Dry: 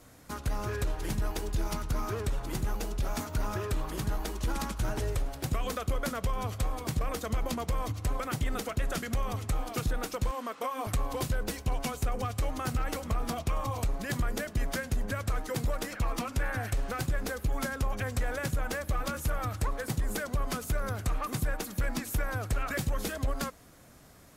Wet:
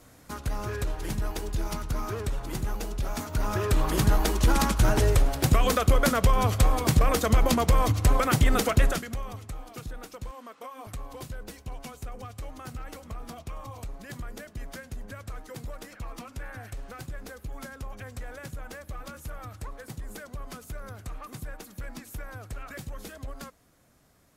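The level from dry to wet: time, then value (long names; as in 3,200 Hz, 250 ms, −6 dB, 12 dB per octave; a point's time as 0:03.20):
0:03.21 +1 dB
0:03.91 +10 dB
0:08.85 +10 dB
0:09.04 −1.5 dB
0:09.56 −8 dB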